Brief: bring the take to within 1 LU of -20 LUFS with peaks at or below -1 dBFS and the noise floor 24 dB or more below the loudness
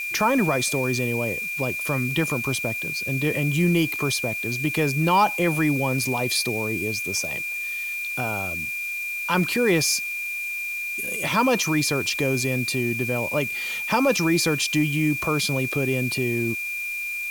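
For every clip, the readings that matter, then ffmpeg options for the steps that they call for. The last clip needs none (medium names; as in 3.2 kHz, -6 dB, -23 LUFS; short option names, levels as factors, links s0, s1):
steady tone 2.4 kHz; tone level -27 dBFS; noise floor -30 dBFS; noise floor target -47 dBFS; loudness -23.0 LUFS; peak level -8.5 dBFS; loudness target -20.0 LUFS
-> -af "bandreject=f=2400:w=30"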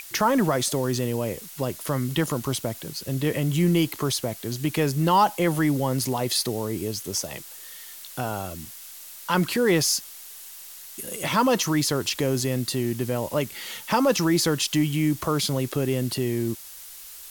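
steady tone not found; noise floor -42 dBFS; noise floor target -49 dBFS
-> -af "afftdn=nr=7:nf=-42"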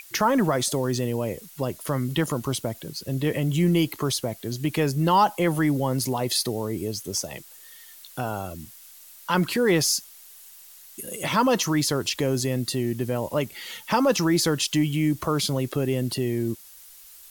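noise floor -48 dBFS; noise floor target -49 dBFS
-> -af "afftdn=nr=6:nf=-48"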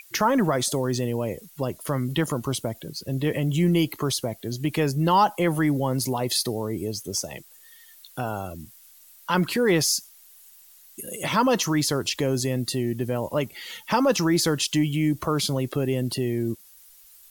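noise floor -52 dBFS; loudness -24.5 LUFS; peak level -9.5 dBFS; loudness target -20.0 LUFS
-> -af "volume=1.68"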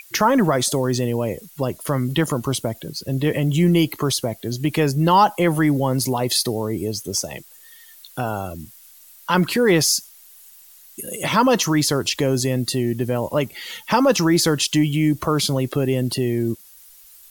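loudness -20.0 LUFS; peak level -5.0 dBFS; noise floor -47 dBFS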